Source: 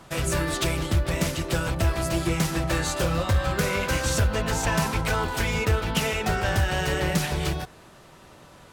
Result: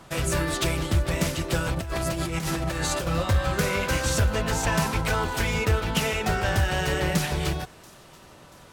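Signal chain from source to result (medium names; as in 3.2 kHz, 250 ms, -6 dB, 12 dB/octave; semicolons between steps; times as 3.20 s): 1.77–3.07 s: compressor with a negative ratio -28 dBFS, ratio -1; on a send: feedback echo behind a high-pass 684 ms, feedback 48%, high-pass 4.2 kHz, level -19.5 dB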